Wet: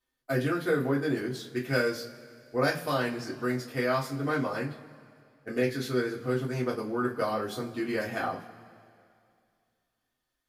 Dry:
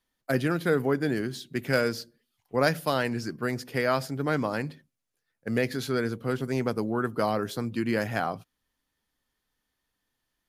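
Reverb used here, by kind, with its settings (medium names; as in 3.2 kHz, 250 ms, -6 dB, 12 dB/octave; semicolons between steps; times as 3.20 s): two-slope reverb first 0.23 s, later 2.4 s, from -22 dB, DRR -6 dB; trim -9 dB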